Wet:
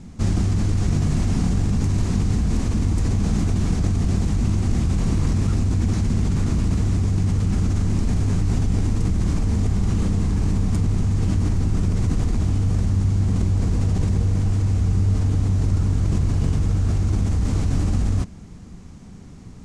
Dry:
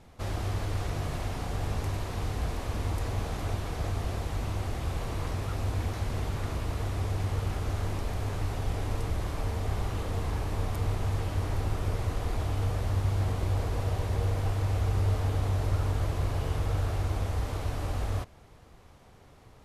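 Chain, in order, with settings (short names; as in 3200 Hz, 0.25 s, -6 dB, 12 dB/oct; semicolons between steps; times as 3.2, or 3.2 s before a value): EQ curve 130 Hz 0 dB, 190 Hz +10 dB, 550 Hz -13 dB, 2300 Hz -9 dB, 3500 Hz -10 dB, 6600 Hz 0 dB; in parallel at -1 dB: negative-ratio compressor -32 dBFS, ratio -0.5; on the sum: LPF 8400 Hz 24 dB/oct; gain +6.5 dB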